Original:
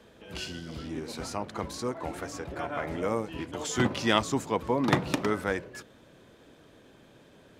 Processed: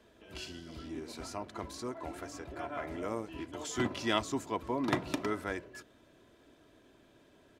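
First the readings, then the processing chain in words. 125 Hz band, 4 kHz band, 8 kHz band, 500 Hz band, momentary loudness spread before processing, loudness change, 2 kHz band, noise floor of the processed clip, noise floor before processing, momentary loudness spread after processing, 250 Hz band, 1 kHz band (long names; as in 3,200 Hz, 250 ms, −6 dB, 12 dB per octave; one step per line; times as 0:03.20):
−9.0 dB, −6.5 dB, −6.5 dB, −7.0 dB, 12 LU, −6.5 dB, −7.0 dB, −63 dBFS, −57 dBFS, 12 LU, −6.0 dB, −6.0 dB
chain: comb filter 3 ms, depth 41%
level −7 dB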